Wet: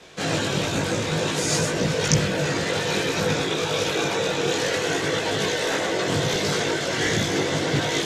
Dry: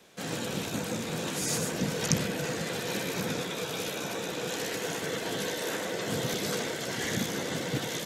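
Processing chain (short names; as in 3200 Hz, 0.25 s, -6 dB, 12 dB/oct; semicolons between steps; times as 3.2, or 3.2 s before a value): LPF 6800 Hz 12 dB/oct; bell 230 Hz -6 dB 0.35 oct; in parallel at +1 dB: vocal rider; on the sum: chorus voices 6, 0.52 Hz, delay 20 ms, depth 1.8 ms; short-mantissa float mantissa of 8-bit; gain +6 dB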